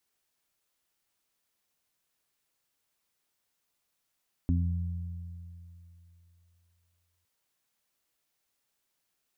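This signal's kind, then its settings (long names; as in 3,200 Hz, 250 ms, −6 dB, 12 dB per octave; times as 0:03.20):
harmonic partials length 2.76 s, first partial 86.3 Hz, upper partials −6/−3.5 dB, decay 3.03 s, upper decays 2.26/0.48 s, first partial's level −23.5 dB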